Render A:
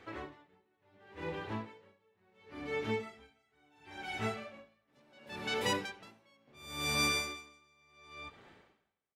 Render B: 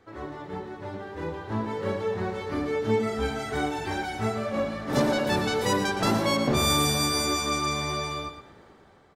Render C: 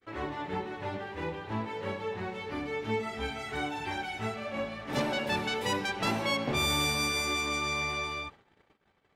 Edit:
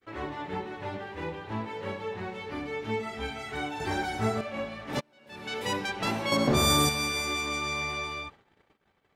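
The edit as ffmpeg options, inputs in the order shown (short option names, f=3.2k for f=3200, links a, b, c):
-filter_complex "[1:a]asplit=2[a][b];[2:a]asplit=4[c][d][e][f];[c]atrim=end=3.802[g];[a]atrim=start=3.798:end=4.412[h];[d]atrim=start=4.408:end=5.01[i];[0:a]atrim=start=4.99:end=5.68[j];[e]atrim=start=5.66:end=6.322[k];[b]atrim=start=6.318:end=6.892[l];[f]atrim=start=6.888[m];[g][h]acrossfade=d=0.004:c1=hsin:c2=hsin[n];[n][i]acrossfade=d=0.004:c1=hsin:c2=hsin[o];[o][j]acrossfade=d=0.02:c1=tri:c2=tri[p];[p][k]acrossfade=d=0.02:c1=tri:c2=tri[q];[q][l]acrossfade=d=0.004:c1=hsin:c2=hsin[r];[r][m]acrossfade=d=0.004:c1=hsin:c2=hsin"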